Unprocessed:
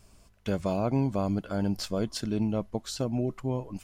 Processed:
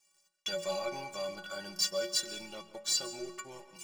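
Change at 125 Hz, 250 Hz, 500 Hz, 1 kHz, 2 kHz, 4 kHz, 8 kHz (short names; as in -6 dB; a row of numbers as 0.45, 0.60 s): -25.5, -20.0, -6.0, -6.0, +3.0, +6.5, +8.5 dB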